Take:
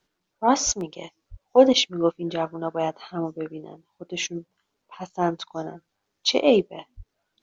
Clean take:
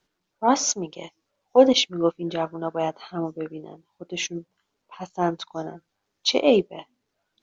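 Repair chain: 0.65–0.77 s: high-pass 140 Hz 24 dB/octave; 1.30–1.42 s: high-pass 140 Hz 24 dB/octave; 6.96–7.08 s: high-pass 140 Hz 24 dB/octave; interpolate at 0.81 s, 1.3 ms

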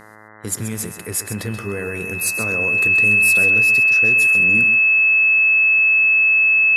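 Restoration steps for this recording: de-hum 107.5 Hz, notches 19; band-stop 2.6 kHz, Q 30; inverse comb 130 ms -10.5 dB

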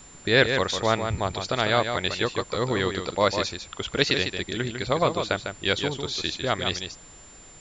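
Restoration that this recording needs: band-stop 7.2 kHz, Q 30; noise reduction 23 dB, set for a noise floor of -48 dBFS; inverse comb 151 ms -7 dB

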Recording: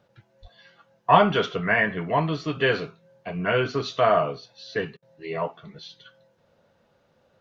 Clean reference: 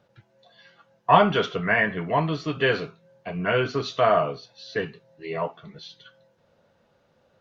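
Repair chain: 0.41–0.53 s: high-pass 140 Hz 24 dB/octave; interpolate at 4.97 s, 53 ms

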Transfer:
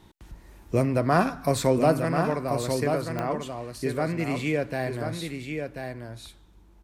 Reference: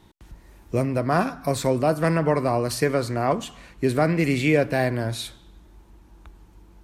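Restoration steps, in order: de-click; inverse comb 1038 ms -6 dB; gain correction +7 dB, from 2.00 s

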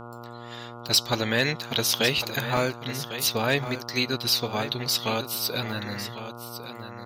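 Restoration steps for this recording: clip repair -10.5 dBFS; de-hum 118.7 Hz, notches 12; interpolate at 1.92/2.57/3.67/6.18 s, 1.5 ms; inverse comb 1101 ms -11.5 dB

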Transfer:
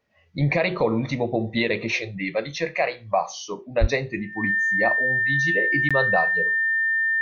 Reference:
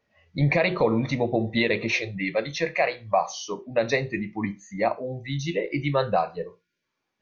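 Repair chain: band-stop 1.8 kHz, Q 30; 3.80–3.92 s: high-pass 140 Hz 24 dB/octave; interpolate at 5.89 s, 16 ms

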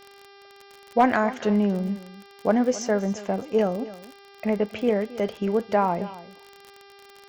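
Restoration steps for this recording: clip repair -8.5 dBFS; de-click; de-hum 398.2 Hz, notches 14; inverse comb 269 ms -17 dB

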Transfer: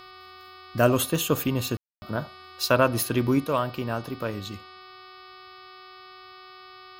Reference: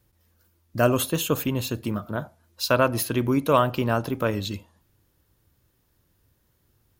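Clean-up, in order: de-hum 373.1 Hz, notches 14; band-stop 1.2 kHz, Q 30; room tone fill 1.77–2.02 s; gain correction +6 dB, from 3.44 s

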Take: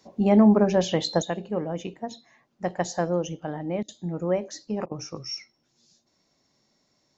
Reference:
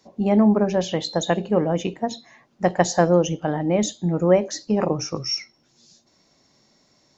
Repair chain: interpolate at 3.83/4.86 s, 52 ms; trim 0 dB, from 1.22 s +8.5 dB

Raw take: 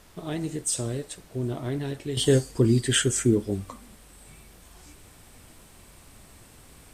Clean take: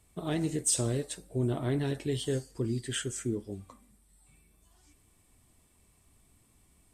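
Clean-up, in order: expander -44 dBFS, range -21 dB; gain correction -11.5 dB, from 2.17 s

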